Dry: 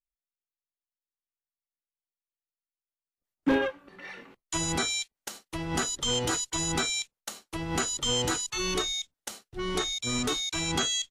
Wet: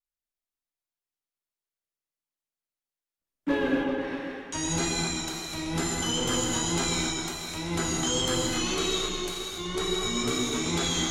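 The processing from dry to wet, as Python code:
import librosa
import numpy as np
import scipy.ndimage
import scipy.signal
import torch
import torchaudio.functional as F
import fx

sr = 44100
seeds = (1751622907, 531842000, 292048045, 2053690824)

y = fx.echo_opening(x, sr, ms=127, hz=400, octaves=2, feedback_pct=70, wet_db=-3)
y = fx.wow_flutter(y, sr, seeds[0], rate_hz=2.1, depth_cents=74.0)
y = fx.rev_gated(y, sr, seeds[1], gate_ms=310, shape='flat', drr_db=-2.5)
y = F.gain(torch.from_numpy(y), -4.5).numpy()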